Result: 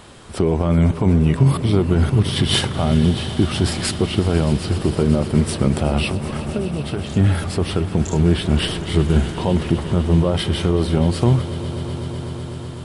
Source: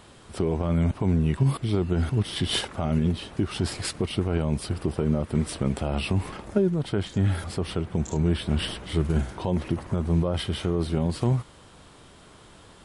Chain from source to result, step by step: 3.97–4.8 air absorption 65 m; 6.09–7.1 compressor, threshold -29 dBFS, peak gain reduction 11 dB; swelling echo 0.125 s, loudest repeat 5, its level -17.5 dB; gain +7.5 dB

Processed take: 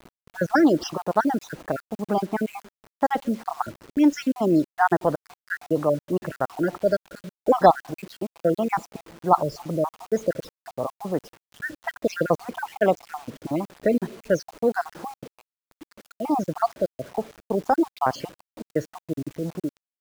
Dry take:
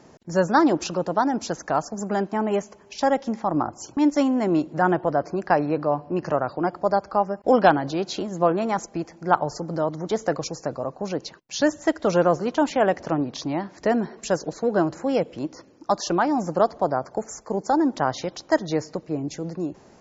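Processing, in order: random spectral dropouts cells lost 55%; low-pass opened by the level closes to 710 Hz, open at -18.5 dBFS; bit-crush 8-bit; gain +2 dB

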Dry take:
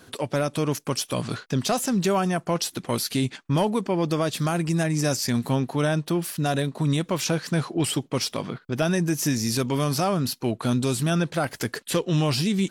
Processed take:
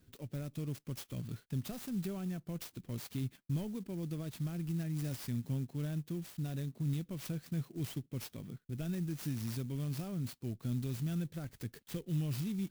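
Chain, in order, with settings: passive tone stack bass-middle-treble 10-0-1; clock jitter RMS 0.042 ms; gain +3 dB

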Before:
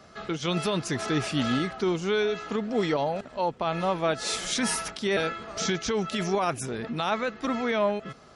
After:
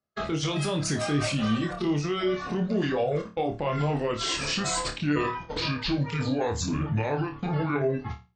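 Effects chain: gliding pitch shift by -8 st starting unshifted; reverb removal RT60 0.55 s; gate -42 dBFS, range -44 dB; low shelf 270 Hz +6 dB; notch 940 Hz, Q 23; limiter -26 dBFS, peak gain reduction 12.5 dB; notches 60/120/180 Hz; on a send: flutter echo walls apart 4.7 m, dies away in 0.28 s; on the sum: gain +6 dB

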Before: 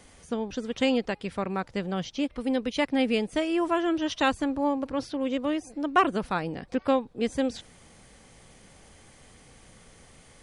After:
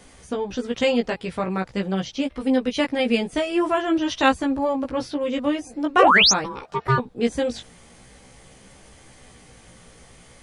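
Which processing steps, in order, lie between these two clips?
5.99–6.32 painted sound rise 420–7000 Hz -19 dBFS; 6.44–6.98 ring modulator 670 Hz; chorus 0.46 Hz, delay 15 ms, depth 2.2 ms; gain +7.5 dB

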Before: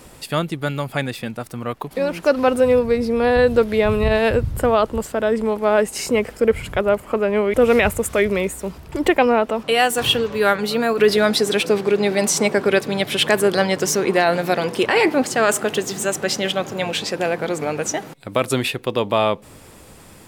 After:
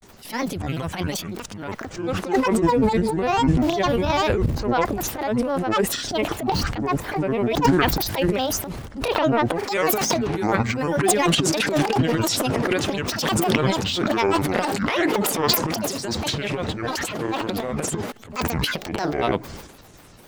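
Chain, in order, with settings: vibrato 0.94 Hz 92 cents; transient shaper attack -10 dB, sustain +11 dB; grains, grains 20/s, spray 20 ms, pitch spread up and down by 12 st; gain -2.5 dB

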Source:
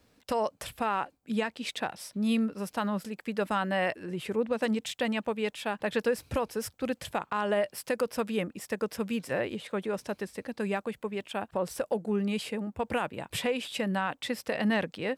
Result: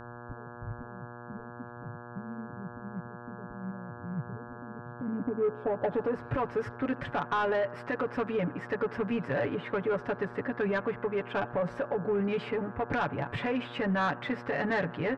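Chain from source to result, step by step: low shelf 170 Hz +7 dB; comb 7 ms, depth 85%; dynamic EQ 1500 Hz, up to -4 dB, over -43 dBFS, Q 1.4; limiter -22.5 dBFS, peak gain reduction 9.5 dB; on a send: darkening echo 82 ms, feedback 69%, low-pass 3600 Hz, level -24 dB; on the sum: low-pass sweep 110 Hz -> 1600 Hz, 4.76–6.31; buzz 120 Hz, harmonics 14, -47 dBFS -2 dB/oct; soft clip -23.5 dBFS, distortion -17 dB; gain +2 dB

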